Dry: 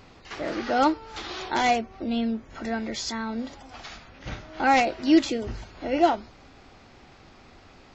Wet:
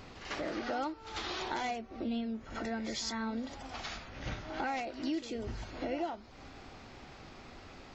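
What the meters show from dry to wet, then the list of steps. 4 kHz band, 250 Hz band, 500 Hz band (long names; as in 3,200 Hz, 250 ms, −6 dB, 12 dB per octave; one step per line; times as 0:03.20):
−8.0 dB, −11.5 dB, −11.5 dB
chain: downward compressor 5 to 1, threshold −35 dBFS, peak gain reduction 19 dB
backwards echo 95 ms −11 dB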